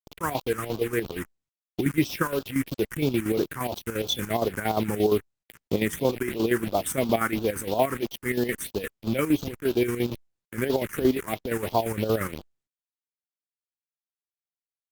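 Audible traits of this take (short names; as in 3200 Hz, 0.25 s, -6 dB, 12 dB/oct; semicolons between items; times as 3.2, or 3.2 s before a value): a quantiser's noise floor 6-bit, dither none; phasing stages 4, 3 Hz, lowest notch 630–1900 Hz; chopped level 8.6 Hz, depth 60%, duty 55%; Opus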